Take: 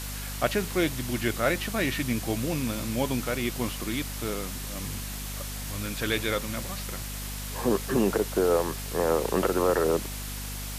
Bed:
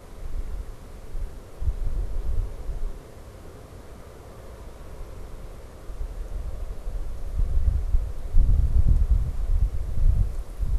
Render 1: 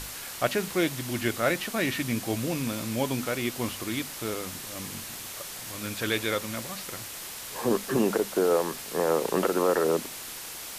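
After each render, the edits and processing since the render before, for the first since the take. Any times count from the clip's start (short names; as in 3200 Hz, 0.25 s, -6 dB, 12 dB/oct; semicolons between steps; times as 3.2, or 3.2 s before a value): notches 50/100/150/200/250 Hz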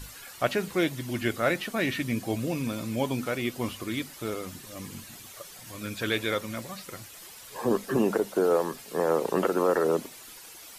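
denoiser 11 dB, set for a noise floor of -40 dBFS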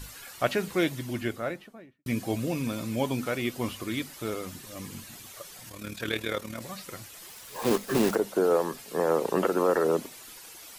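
0.88–2.06 studio fade out; 5.69–6.62 AM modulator 38 Hz, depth 50%; 7.27–8.17 block floating point 3-bit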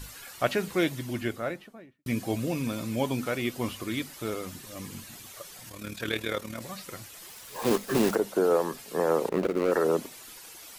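9.29–9.72 median filter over 41 samples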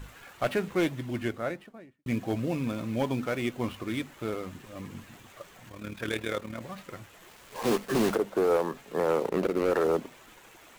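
median filter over 9 samples; hard clip -19 dBFS, distortion -17 dB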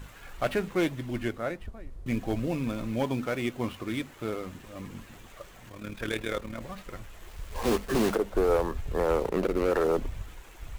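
add bed -16 dB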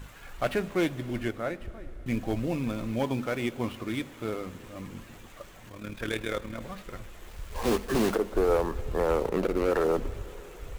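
plate-style reverb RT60 4.6 s, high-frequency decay 0.95×, DRR 17 dB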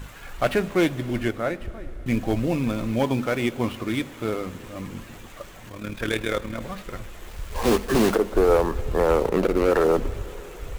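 gain +6 dB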